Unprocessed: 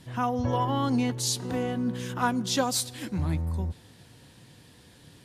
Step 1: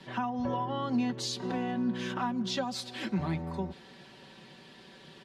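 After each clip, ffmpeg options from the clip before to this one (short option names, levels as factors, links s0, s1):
-filter_complex "[0:a]acrossover=split=210 5100:gain=0.2 1 0.0891[s0][s1][s2];[s0][s1][s2]amix=inputs=3:normalize=0,aecho=1:1:5.2:0.72,acrossover=split=210[s3][s4];[s4]acompressor=threshold=0.0141:ratio=4[s5];[s3][s5]amix=inputs=2:normalize=0,volume=1.5"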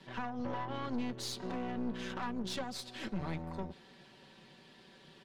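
-af "aeval=exprs='(tanh(35.5*val(0)+0.75)-tanh(0.75))/35.5':c=same,volume=0.841"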